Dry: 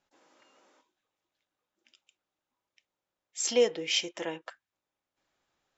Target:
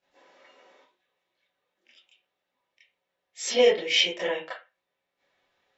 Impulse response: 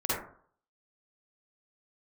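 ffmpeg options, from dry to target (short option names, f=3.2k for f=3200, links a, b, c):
-filter_complex "[0:a]equalizer=f=500:t=o:w=1:g=8,equalizer=f=2k:t=o:w=1:g=7,equalizer=f=4k:t=o:w=1:g=6[a];[1:a]atrim=start_sample=2205,asetrate=88200,aresample=44100[b];[a][b]afir=irnorm=-1:irlink=0,volume=-3dB"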